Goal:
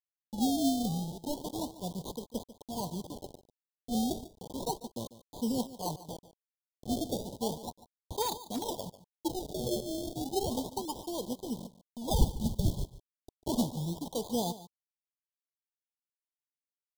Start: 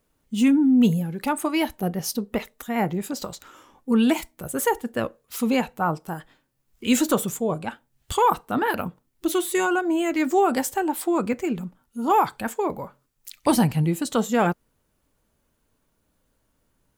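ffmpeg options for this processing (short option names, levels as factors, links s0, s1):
-filter_complex "[0:a]flanger=delay=0.8:depth=3.7:regen=30:speed=1:shape=sinusoidal,acrusher=samples=31:mix=1:aa=0.000001:lfo=1:lforange=31:lforate=0.33,asplit=3[s0][s1][s2];[s0]afade=t=out:st=12.1:d=0.02[s3];[s1]asubboost=boost=10:cutoff=140,afade=t=in:st=12.1:d=0.02,afade=t=out:st=12.83:d=0.02[s4];[s2]afade=t=in:st=12.83:d=0.02[s5];[s3][s4][s5]amix=inputs=3:normalize=0,acrusher=bits=5:mix=0:aa=0.000001,asuperstop=centerf=1800:order=20:qfactor=0.84,aecho=1:1:145:0.158,asplit=3[s6][s7][s8];[s6]afade=t=out:st=8.21:d=0.02[s9];[s7]volume=10.6,asoftclip=hard,volume=0.0944,afade=t=in:st=8.21:d=0.02,afade=t=out:st=8.66:d=0.02[s10];[s8]afade=t=in:st=8.66:d=0.02[s11];[s9][s10][s11]amix=inputs=3:normalize=0,adynamicequalizer=threshold=0.00794:dfrequency=2700:dqfactor=0.7:tfrequency=2700:tqfactor=0.7:attack=5:release=100:ratio=0.375:range=1.5:mode=boostabove:tftype=highshelf,volume=0.398"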